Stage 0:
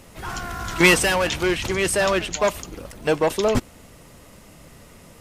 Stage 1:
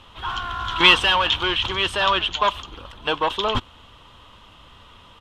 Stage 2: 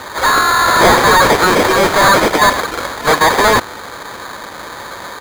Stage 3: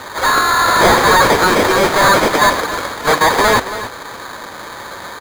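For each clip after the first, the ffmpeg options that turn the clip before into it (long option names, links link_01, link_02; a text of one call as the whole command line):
ffmpeg -i in.wav -af "firequalizer=gain_entry='entry(100,0);entry(150,-10);entry(240,-6);entry(650,-5);entry(990,9);entry(2100,-4);entry(3200,14);entry(4700,-6);entry(7200,-13);entry(11000,-19)':delay=0.05:min_phase=1,volume=-1dB" out.wav
ffmpeg -i in.wav -filter_complex "[0:a]acrusher=samples=16:mix=1:aa=0.000001,asplit=2[link_01][link_02];[link_02]highpass=frequency=720:poles=1,volume=30dB,asoftclip=type=tanh:threshold=-1.5dB[link_03];[link_01][link_03]amix=inputs=2:normalize=0,lowpass=frequency=6800:poles=1,volume=-6dB" out.wav
ffmpeg -i in.wav -af "aecho=1:1:277:0.237,flanger=delay=7:depth=4.2:regen=-83:speed=0.48:shape=triangular,volume=3dB" out.wav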